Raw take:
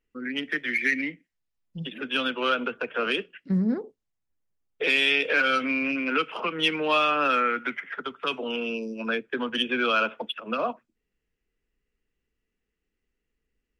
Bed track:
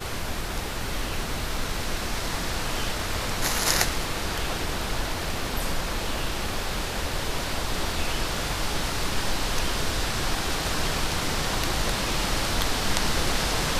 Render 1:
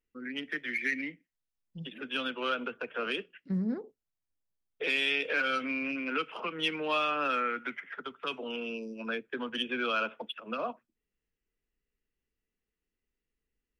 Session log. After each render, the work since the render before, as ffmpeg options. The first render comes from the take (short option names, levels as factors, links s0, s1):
-af "volume=0.447"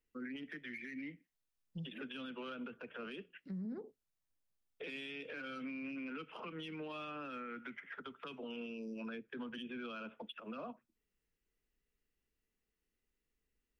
-filter_complex "[0:a]acrossover=split=260[s0][s1];[s1]acompressor=threshold=0.00631:ratio=5[s2];[s0][s2]amix=inputs=2:normalize=0,alimiter=level_in=4.47:limit=0.0631:level=0:latency=1:release=48,volume=0.224"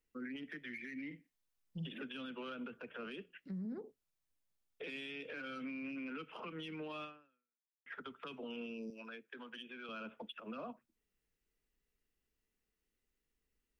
-filter_complex "[0:a]asettb=1/sr,asplit=3[s0][s1][s2];[s0]atrim=end=1.064[s3];[s1]atrim=start=1.06:end=2.03,asetpts=PTS-STARTPTS,afade=t=in:d=0.004:c=qsin,afade=t=out:st=0.966:d=0.004:c=qsin,asplit=2[s4][s5];[s5]adelay=49,volume=0.376[s6];[s4][s6]amix=inputs=2:normalize=0,atrim=end_sample=42777[s7];[s2]atrim=start=2.026[s8];[s3][s7]acrossfade=d=0.004:c1=hsin:c2=qsin[s9];[s9][s8]acrossfade=d=0.004:c1=qsin:c2=hsin,asettb=1/sr,asplit=3[s10][s11][s12];[s10]atrim=end=8.904[s13];[s11]atrim=start=8.9:end=9.89,asetpts=PTS-STARTPTS,afade=t=in:d=0.004:c=qsin,afade=t=out:st=0.986:d=0.004:c=qsin,highpass=f=720:p=1[s14];[s12]atrim=start=9.886[s15];[s13][s14]acrossfade=d=0.004:c1=hsin:c2=qsin[s16];[s16][s15]acrossfade=d=0.004:c1=qsin:c2=hsin,asplit=2[s17][s18];[s17]atrim=end=7.86,asetpts=PTS-STARTPTS,afade=t=out:st=7.04:d=0.82:c=exp[s19];[s18]atrim=start=7.86,asetpts=PTS-STARTPTS,afade=t=in:d=0.004:c=hsin[s20];[s19][s20]concat=n=2:v=0:a=1"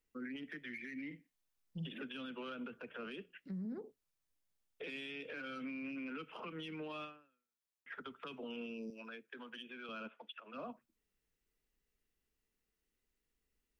-filter_complex "[0:a]asplit=3[s0][s1][s2];[s0]afade=t=out:st=10.07:d=0.02[s3];[s1]bandpass=f=2100:t=q:w=0.54,afade=t=in:st=10.07:d=0.02,afade=t=out:st=10.53:d=0.02[s4];[s2]afade=t=in:st=10.53:d=0.02[s5];[s3][s4][s5]amix=inputs=3:normalize=0"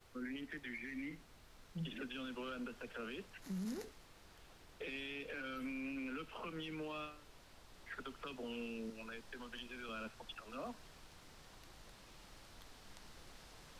-filter_complex "[1:a]volume=0.0224[s0];[0:a][s0]amix=inputs=2:normalize=0"